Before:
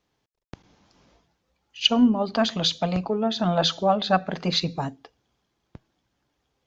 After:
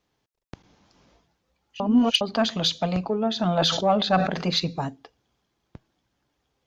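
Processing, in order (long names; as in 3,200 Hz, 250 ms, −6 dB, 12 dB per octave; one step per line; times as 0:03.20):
soft clipping −7.5 dBFS, distortion −24 dB
0:01.80–0:02.21: reverse
0:03.52–0:04.45: level that may fall only so fast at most 64 dB per second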